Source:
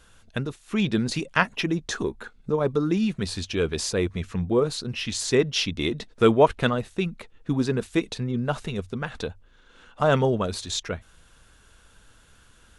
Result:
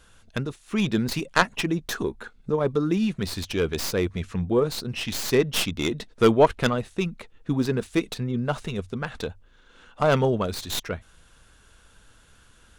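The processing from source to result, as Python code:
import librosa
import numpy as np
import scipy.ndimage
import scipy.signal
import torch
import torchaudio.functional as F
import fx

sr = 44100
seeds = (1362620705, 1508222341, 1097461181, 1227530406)

y = fx.tracing_dist(x, sr, depth_ms=0.12)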